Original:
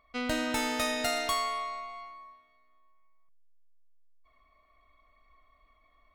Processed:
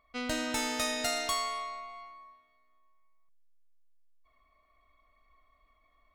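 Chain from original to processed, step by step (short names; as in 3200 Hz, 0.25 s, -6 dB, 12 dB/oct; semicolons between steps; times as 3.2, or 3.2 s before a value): dynamic EQ 6600 Hz, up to +6 dB, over -49 dBFS, Q 0.86; gain -3 dB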